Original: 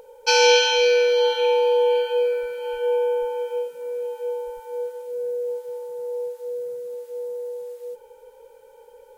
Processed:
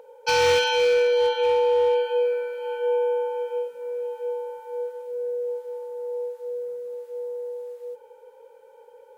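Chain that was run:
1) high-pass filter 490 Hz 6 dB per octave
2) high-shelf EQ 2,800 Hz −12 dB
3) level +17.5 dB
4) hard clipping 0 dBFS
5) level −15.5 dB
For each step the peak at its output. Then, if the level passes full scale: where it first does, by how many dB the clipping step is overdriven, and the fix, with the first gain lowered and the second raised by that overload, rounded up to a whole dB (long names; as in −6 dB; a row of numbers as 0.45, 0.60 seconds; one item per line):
−5.0, −8.5, +9.0, 0.0, −15.5 dBFS
step 3, 9.0 dB
step 3 +8.5 dB, step 5 −6.5 dB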